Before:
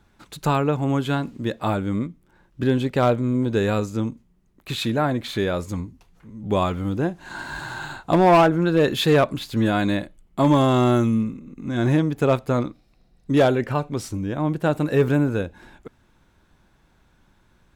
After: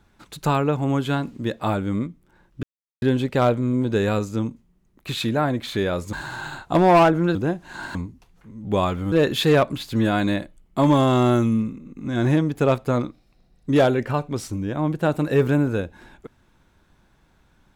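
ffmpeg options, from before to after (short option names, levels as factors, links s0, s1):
-filter_complex "[0:a]asplit=6[s0][s1][s2][s3][s4][s5];[s0]atrim=end=2.63,asetpts=PTS-STARTPTS,afade=t=out:st=2.626:d=0.004:c=hsin,apad=pad_dur=0.39[s6];[s1]atrim=start=2.63:end=5.742,asetpts=PTS-STARTPTS,afade=t=in:d=0.004:c=hsin[s7];[s2]atrim=start=7.508:end=8.732[s8];[s3]atrim=start=6.908:end=7.512[s9];[s4]atrim=start=5.738:end=6.912[s10];[s5]atrim=start=8.728[s11];[s6][s7]concat=n=2:v=0:a=1[s12];[s12][s8]acrossfade=d=0.004:c1=hsin:c2=hsin[s13];[s13][s9]acrossfade=d=0.004:c1=hsin:c2=hsin[s14];[s14][s10]acrossfade=d=0.004:c1=hsin:c2=hsin[s15];[s15][s11]acrossfade=d=0.004:c1=hsin:c2=hsin"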